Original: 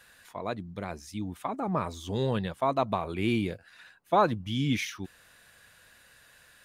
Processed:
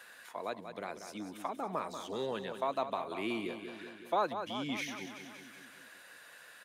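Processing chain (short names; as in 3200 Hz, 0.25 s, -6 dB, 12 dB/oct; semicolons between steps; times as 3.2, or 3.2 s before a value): HPF 320 Hz 12 dB/oct; feedback echo 0.187 s, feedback 53%, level -10 dB; three-band squash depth 40%; gain -5 dB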